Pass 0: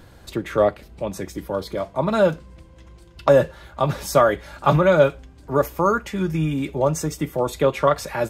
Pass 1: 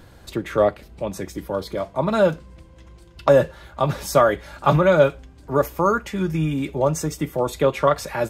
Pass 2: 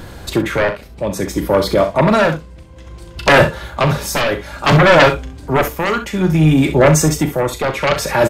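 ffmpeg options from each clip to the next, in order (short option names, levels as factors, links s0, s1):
-af anull
-filter_complex "[0:a]aeval=exprs='0.708*sin(PI/2*3.98*val(0)/0.708)':c=same,tremolo=f=0.59:d=0.61,asplit=2[s0][s1];[s1]aecho=0:1:38|65:0.299|0.282[s2];[s0][s2]amix=inputs=2:normalize=0,volume=0.794"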